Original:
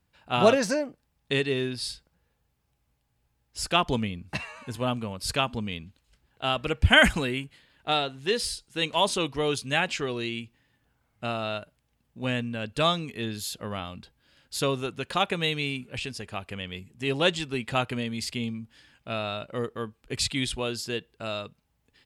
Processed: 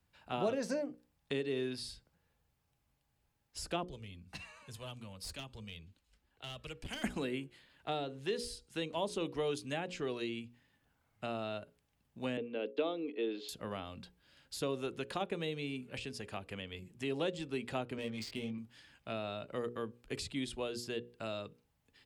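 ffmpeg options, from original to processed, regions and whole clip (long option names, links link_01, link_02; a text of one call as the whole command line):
ffmpeg -i in.wav -filter_complex "[0:a]asettb=1/sr,asplit=3[link_01][link_02][link_03];[link_01]atrim=end=3.854[link_04];[link_02]atrim=start=3.85:end=7.04,asetpts=PTS-STARTPTS,afade=type=in:duration=0.004:curve=qsin,afade=type=out:start_time=3.186:duration=0.004:curve=qsin,acrossover=split=130|3000[link_05][link_06][link_07];[link_06]acompressor=threshold=-56dB:ratio=1.5:attack=3.2:release=140:knee=2.83:detection=peak[link_08];[link_05][link_08][link_07]amix=inputs=3:normalize=0,flanger=delay=1.6:depth=2.5:regen=-47:speed=1.1:shape=sinusoidal,aeval=exprs='clip(val(0),-1,0.02)':channel_layout=same[link_09];[link_03]atrim=start=7.036[link_10];[link_04][link_09]acrossfade=duration=0.004:curve1=hsin:curve2=qsin[link_11];[link_11][link_10]acrossfade=duration=0.004:curve1=qsin:curve2=hsin,asettb=1/sr,asplit=3[link_12][link_13][link_14];[link_12]atrim=end=12.374[link_15];[link_13]atrim=start=12.37:end=13.49,asetpts=PTS-STARTPTS,afade=type=in:duration=0.004:curve=qsin,afade=type=out:start_time=1.116:duration=0.004:curve=qsin,agate=range=-33dB:threshold=-38dB:ratio=3:release=100:detection=peak,highpass=frequency=290:width=0.5412,highpass=frequency=290:width=1.3066,equalizer=frequency=300:width_type=q:width=4:gain=8,equalizer=frequency=450:width_type=q:width=4:gain=10,equalizer=frequency=1100:width_type=q:width=4:gain=-4,equalizer=frequency=1700:width_type=q:width=4:gain=-8,lowpass=frequency=3400:width=0.5412,lowpass=frequency=3400:width=1.3066[link_16];[link_14]atrim=start=13.486[link_17];[link_15][link_16]acrossfade=duration=0.004:curve1=hsin:curve2=qsin[link_18];[link_18][link_17]acrossfade=duration=0.004:curve1=qsin:curve2=hsin,asettb=1/sr,asplit=3[link_19][link_20][link_21];[link_19]atrim=end=17.964[link_22];[link_20]atrim=start=17.96:end=18.58,asetpts=PTS-STARTPTS,afade=type=in:duration=0.004:curve=qsin,afade=type=out:start_time=0.616:duration=0.004:curve=qsin,adynamicsmooth=sensitivity=6:basefreq=2200,asplit=2[link_23][link_24];[link_24]adelay=19,volume=-4dB[link_25];[link_23][link_25]amix=inputs=2:normalize=0,atrim=end_sample=27342[link_26];[link_21]atrim=start=18.576[link_27];[link_22][link_26]acrossfade=duration=0.004:curve1=hsin:curve2=qsin[link_28];[link_28][link_27]acrossfade=duration=0.004:curve1=qsin:curve2=hsin,bandreject=frequency=60:width_type=h:width=6,bandreject=frequency=120:width_type=h:width=6,bandreject=frequency=180:width_type=h:width=6,bandreject=frequency=240:width_type=h:width=6,bandreject=frequency=300:width_type=h:width=6,bandreject=frequency=360:width_type=h:width=6,bandreject=frequency=420:width_type=h:width=6,bandreject=frequency=480:width_type=h:width=6,bandreject=frequency=540:width_type=h:width=6,acrossover=split=230|590[link_29][link_30][link_31];[link_29]acompressor=threshold=-46dB:ratio=4[link_32];[link_30]acompressor=threshold=-30dB:ratio=4[link_33];[link_31]acompressor=threshold=-40dB:ratio=4[link_34];[link_32][link_33][link_34]amix=inputs=3:normalize=0,volume=-3.5dB" out.wav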